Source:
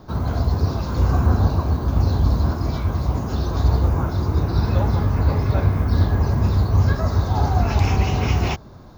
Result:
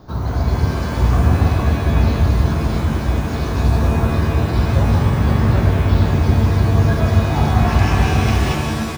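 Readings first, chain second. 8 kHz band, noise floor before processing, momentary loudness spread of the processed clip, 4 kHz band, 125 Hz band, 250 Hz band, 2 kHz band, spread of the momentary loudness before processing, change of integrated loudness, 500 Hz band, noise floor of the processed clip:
no reading, -40 dBFS, 4 LU, +5.5 dB, +3.5 dB, +5.5 dB, +8.0 dB, 5 LU, +3.5 dB, +4.5 dB, -22 dBFS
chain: delay 372 ms -12 dB; pitch-shifted reverb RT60 1.9 s, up +7 st, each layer -2 dB, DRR 3 dB

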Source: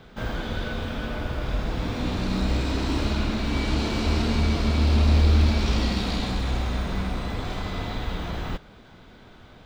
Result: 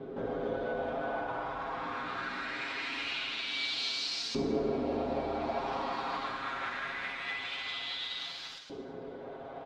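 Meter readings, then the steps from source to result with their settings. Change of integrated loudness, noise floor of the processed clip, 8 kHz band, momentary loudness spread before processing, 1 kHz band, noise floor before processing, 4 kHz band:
-9.0 dB, -45 dBFS, -8.0 dB, 11 LU, -2.5 dB, -49 dBFS, -3.0 dB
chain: comb 7.4 ms, depth 88%; in parallel at -1 dB: compressor with a negative ratio -36 dBFS, ratio -1; on the sum: LFO band-pass saw up 0.23 Hz 360–5500 Hz; two-slope reverb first 0.89 s, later 2.5 s, DRR 7 dB; MP3 80 kbps 44.1 kHz

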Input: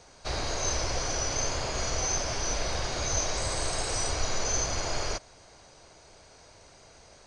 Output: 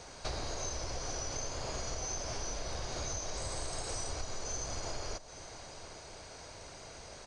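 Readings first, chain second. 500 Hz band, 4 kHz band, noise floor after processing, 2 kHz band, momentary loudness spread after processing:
-8.0 dB, -9.0 dB, -50 dBFS, -10.5 dB, 11 LU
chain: dynamic bell 2.2 kHz, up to -4 dB, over -45 dBFS, Q 0.71; compression 12:1, threshold -39 dBFS, peak gain reduction 17 dB; on a send: delay 829 ms -16 dB; on the sum: trim +4.5 dB

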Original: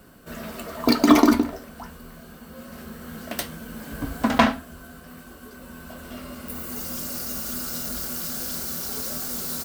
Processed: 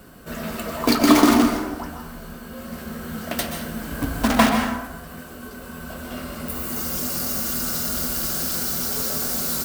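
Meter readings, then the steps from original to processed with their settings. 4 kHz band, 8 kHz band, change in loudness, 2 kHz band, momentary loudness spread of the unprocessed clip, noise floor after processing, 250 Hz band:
+4.0 dB, +5.5 dB, +2.5 dB, +3.5 dB, 23 LU, -39 dBFS, +2.0 dB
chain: in parallel at -3.5 dB: integer overflow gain 18 dB; on the sum: plate-style reverb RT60 1 s, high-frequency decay 0.6×, pre-delay 115 ms, DRR 4 dB

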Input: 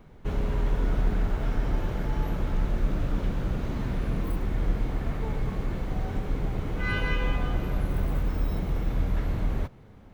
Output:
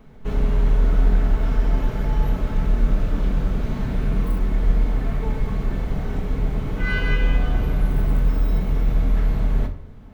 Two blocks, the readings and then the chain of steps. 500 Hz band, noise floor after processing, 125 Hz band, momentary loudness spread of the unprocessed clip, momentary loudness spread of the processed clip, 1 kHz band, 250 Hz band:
+4.0 dB, -36 dBFS, +6.0 dB, 4 LU, 6 LU, +3.0 dB, +5.0 dB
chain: simulated room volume 820 m³, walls furnished, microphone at 1.5 m; trim +2 dB

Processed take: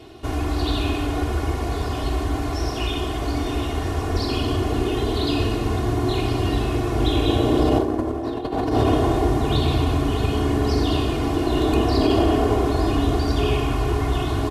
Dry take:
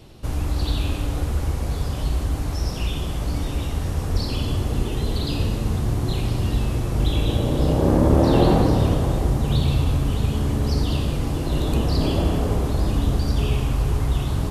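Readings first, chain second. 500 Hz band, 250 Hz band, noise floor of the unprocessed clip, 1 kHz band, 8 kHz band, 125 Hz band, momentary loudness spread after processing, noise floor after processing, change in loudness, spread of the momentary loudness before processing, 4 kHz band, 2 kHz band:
+3.5 dB, +2.5 dB, -27 dBFS, +5.0 dB, -1.0 dB, -2.5 dB, 6 LU, -27 dBFS, +0.5 dB, 8 LU, +3.0 dB, +5.0 dB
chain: high-pass 210 Hz 6 dB/octave; treble shelf 4.8 kHz -11.5 dB; comb 2.8 ms, depth 93%; compressor with a negative ratio -21 dBFS, ratio -0.5; trim +4 dB

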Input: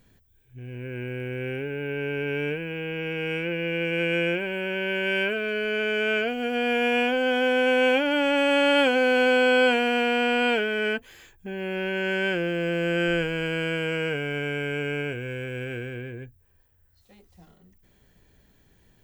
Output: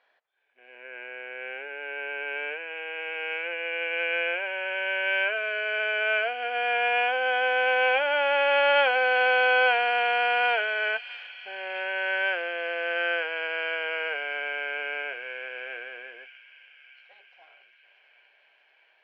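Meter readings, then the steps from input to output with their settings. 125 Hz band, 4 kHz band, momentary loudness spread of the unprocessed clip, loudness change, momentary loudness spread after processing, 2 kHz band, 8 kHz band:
under -40 dB, -2.0 dB, 13 LU, -1.0 dB, 15 LU, +1.5 dB, no reading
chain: elliptic band-pass 640–5700 Hz, stop band 60 dB; distance through air 360 m; on a send: feedback echo behind a high-pass 634 ms, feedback 66%, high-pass 4.1 kHz, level -5.5 dB; on the sum: trim +5 dB

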